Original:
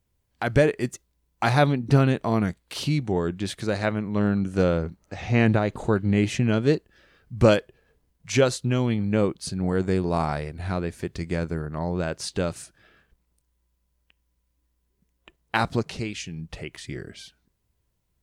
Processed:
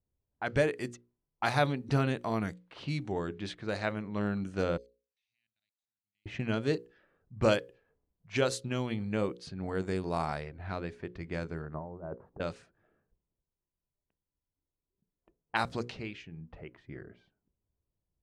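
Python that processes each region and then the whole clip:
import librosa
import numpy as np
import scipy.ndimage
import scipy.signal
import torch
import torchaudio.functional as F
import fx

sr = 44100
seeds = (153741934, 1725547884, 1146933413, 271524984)

y = fx.chain(x, sr, fx.cheby2_highpass(hz=1200.0, order=4, stop_db=60),
    fx.level_steps(step_db=18), at=(4.77, 6.26))
y = fx.chain(y, sr, fx.lowpass(hz=1100.0, slope=24),
    fx.over_compress(threshold_db=-30.0, ratio=-0.5), at=(11.74, 12.4))
y = fx.hum_notches(y, sr, base_hz=60, count=9)
y = fx.env_lowpass(y, sr, base_hz=590.0, full_db=-20.5)
y = fx.low_shelf(y, sr, hz=460.0, db=-5.0)
y = F.gain(torch.from_numpy(y), -5.5).numpy()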